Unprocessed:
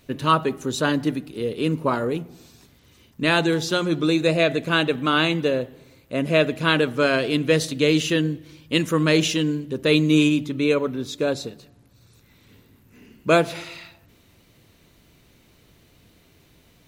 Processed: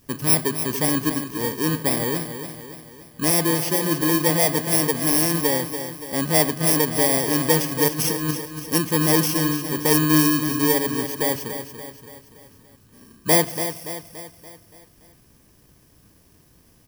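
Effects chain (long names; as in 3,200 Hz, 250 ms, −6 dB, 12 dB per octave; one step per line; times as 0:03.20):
samples in bit-reversed order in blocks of 32 samples
0:07.88–0:08.31: compressor whose output falls as the input rises −24 dBFS, ratio −0.5
repeating echo 286 ms, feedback 51%, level −9.5 dB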